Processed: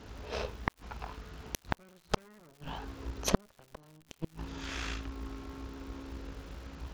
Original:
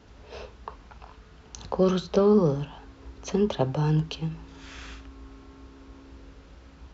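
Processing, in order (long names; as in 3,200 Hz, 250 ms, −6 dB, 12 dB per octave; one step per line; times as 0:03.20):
harmonic generator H 8 −11 dB, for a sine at −9 dBFS
gate with flip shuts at −15 dBFS, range −42 dB
surface crackle 180 per second −51 dBFS
level +4 dB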